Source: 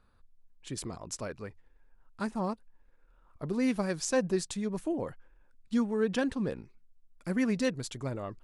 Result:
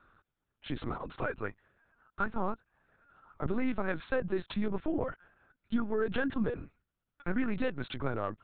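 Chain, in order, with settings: high-pass 100 Hz 24 dB/octave; peaking EQ 1.4 kHz +10 dB 0.39 oct; band-stop 360 Hz, Q 12; compression 10:1, threshold -31 dBFS, peak gain reduction 9.5 dB; LPC vocoder at 8 kHz pitch kept; trim +4.5 dB

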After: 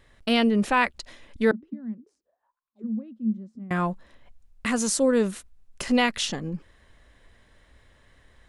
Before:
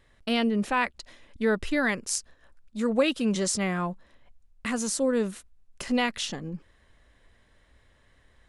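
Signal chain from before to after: 1.51–3.71 s: auto-wah 220–1200 Hz, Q 15, down, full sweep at -24 dBFS; trim +4 dB

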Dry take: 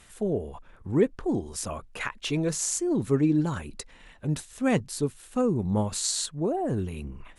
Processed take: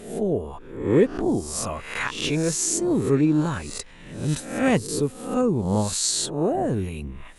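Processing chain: reverse spectral sustain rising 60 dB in 0.62 s; trim +2.5 dB

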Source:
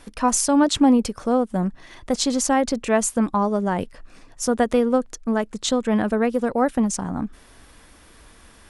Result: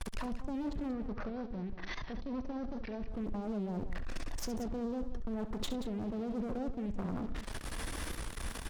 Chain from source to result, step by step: low-pass that closes with the level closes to 410 Hz, closed at -19 dBFS; gate with hold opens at -40 dBFS; bass shelf 81 Hz +9.5 dB; compressor with a negative ratio -31 dBFS, ratio -1; waveshaping leveller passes 3; peak limiter -28 dBFS, peak gain reduction 14.5 dB; flange 0.31 Hz, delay 0.8 ms, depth 5.8 ms, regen +88%; one-sided clip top -44.5 dBFS, bottom -31.5 dBFS; 0.93–3.12 s: rippled Chebyshev low-pass 6 kHz, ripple 3 dB; multi-tap echo 67/183 ms -12.5/-12 dB; warped record 78 rpm, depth 100 cents; trim +3 dB

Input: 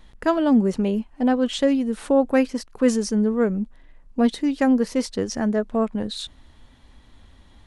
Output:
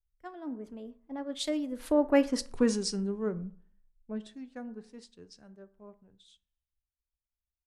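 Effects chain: Doppler pass-by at 2.38 s, 32 m/s, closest 8.2 m; compression 2:1, threshold -33 dBFS, peak gain reduction 10 dB; plate-style reverb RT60 0.74 s, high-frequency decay 0.4×, DRR 13 dB; three bands expanded up and down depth 100%

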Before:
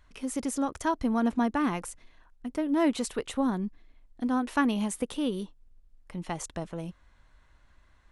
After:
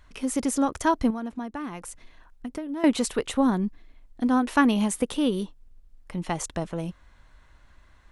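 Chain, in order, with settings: 1.10–2.84 s: compression 5:1, threshold -37 dBFS, peak gain reduction 14 dB; trim +5.5 dB

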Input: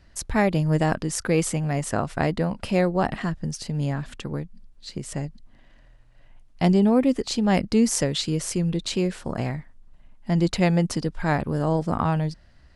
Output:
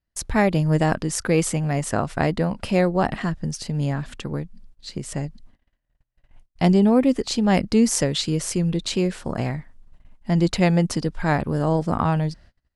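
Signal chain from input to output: gate -47 dBFS, range -30 dB; trim +2 dB

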